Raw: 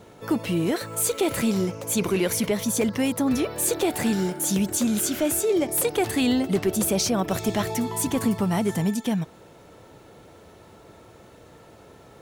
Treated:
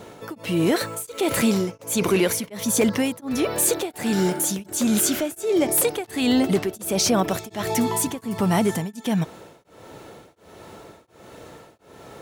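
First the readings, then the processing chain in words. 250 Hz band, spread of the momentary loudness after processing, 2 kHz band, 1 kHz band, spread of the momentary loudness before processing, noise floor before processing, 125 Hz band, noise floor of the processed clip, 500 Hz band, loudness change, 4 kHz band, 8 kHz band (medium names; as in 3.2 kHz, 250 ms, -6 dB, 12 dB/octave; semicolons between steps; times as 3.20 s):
+1.0 dB, 6 LU, +2.5 dB, +2.5 dB, 4 LU, -50 dBFS, +1.0 dB, -53 dBFS, +1.5 dB, +1.5 dB, +2.5 dB, +2.0 dB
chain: bass shelf 130 Hz -7.5 dB; in parallel at +1 dB: peak limiter -22.5 dBFS, peak gain reduction 9.5 dB; on the sum: tremolo of two beating tones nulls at 1.4 Hz; trim +1.5 dB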